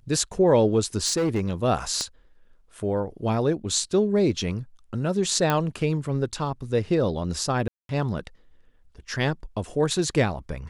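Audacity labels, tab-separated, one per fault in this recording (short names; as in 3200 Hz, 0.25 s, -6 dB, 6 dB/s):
1.050000	1.480000	clipped -19.5 dBFS
2.010000	2.010000	pop -15 dBFS
5.500000	5.500000	pop -9 dBFS
7.680000	7.890000	gap 0.212 s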